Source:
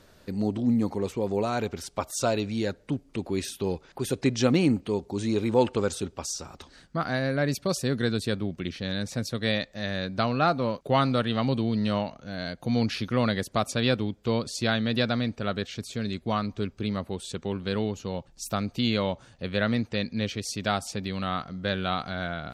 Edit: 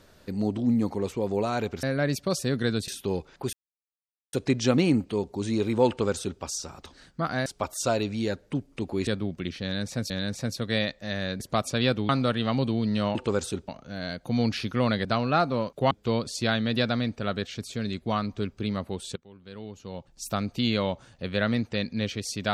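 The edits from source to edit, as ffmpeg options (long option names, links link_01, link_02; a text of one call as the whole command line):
ffmpeg -i in.wav -filter_complex "[0:a]asplit=14[link_01][link_02][link_03][link_04][link_05][link_06][link_07][link_08][link_09][link_10][link_11][link_12][link_13][link_14];[link_01]atrim=end=1.832[link_15];[link_02]atrim=start=7.218:end=8.272[link_16];[link_03]atrim=start=3.438:end=4.09,asetpts=PTS-STARTPTS,afade=type=out:start_time=0.648:duration=0.004:curve=hsin,apad=pad_dur=0.8[link_17];[link_04]atrim=start=4.09:end=7.222,asetpts=PTS-STARTPTS,afade=type=in:duration=0.004:curve=hsin[link_18];[link_05]atrim=start=1.828:end=3.442[link_19];[link_06]atrim=start=8.268:end=9.302[link_20];[link_07]atrim=start=8.828:end=10.132[link_21];[link_08]atrim=start=13.418:end=14.112[link_22];[link_09]atrim=start=10.988:end=12.052[link_23];[link_10]atrim=start=5.638:end=6.172[link_24];[link_11]atrim=start=12.048:end=13.422[link_25];[link_12]atrim=start=10.128:end=10.992[link_26];[link_13]atrim=start=14.108:end=17.36,asetpts=PTS-STARTPTS,afade=type=out:start_time=3.248:duration=0.004:curve=hsin:silence=0.0891251[link_27];[link_14]atrim=start=17.36,asetpts=PTS-STARTPTS,afade=type=in:duration=1.12:curve=qua:silence=0.0891251[link_28];[link_15][link_16]acrossfade=duration=0.004:curve1=hsin:curve2=hsin[link_29];[link_17][link_18]concat=n=2:v=0:a=1[link_30];[link_29][link_30]acrossfade=duration=0.004:curve1=hsin:curve2=hsin[link_31];[link_31][link_19]acrossfade=duration=0.004:curve1=hsin:curve2=hsin[link_32];[link_32][link_20]acrossfade=duration=0.004:curve1=hsin:curve2=hsin[link_33];[link_33][link_21]acrossfade=duration=0.004:curve1=hsin:curve2=hsin[link_34];[link_34][link_22]acrossfade=duration=0.004:curve1=hsin:curve2=hsin[link_35];[link_35][link_23]acrossfade=duration=0.004:curve1=hsin:curve2=hsin[link_36];[link_36][link_24]acrossfade=duration=0.004:curve1=hsin:curve2=hsin[link_37];[link_37][link_25]acrossfade=duration=0.004:curve1=hsin:curve2=hsin[link_38];[link_38][link_26]acrossfade=duration=0.004:curve1=hsin:curve2=hsin[link_39];[link_27][link_28]concat=n=2:v=0:a=1[link_40];[link_39][link_40]acrossfade=duration=0.004:curve1=hsin:curve2=hsin" out.wav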